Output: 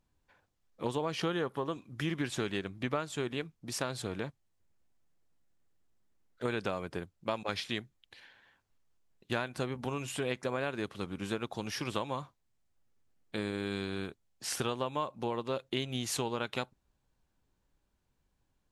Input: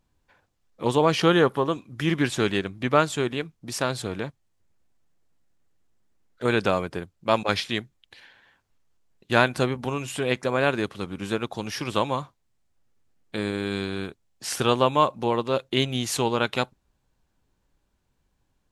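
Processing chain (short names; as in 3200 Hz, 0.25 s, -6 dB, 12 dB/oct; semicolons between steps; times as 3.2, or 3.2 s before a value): compressor 6:1, threshold -24 dBFS, peak gain reduction 11.5 dB; gain -5.5 dB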